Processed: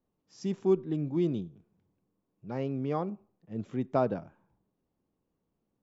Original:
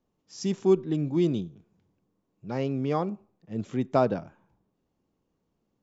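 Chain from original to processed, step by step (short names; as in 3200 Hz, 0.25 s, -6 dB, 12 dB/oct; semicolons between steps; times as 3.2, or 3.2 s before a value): high shelf 3600 Hz -10 dB; gain -4 dB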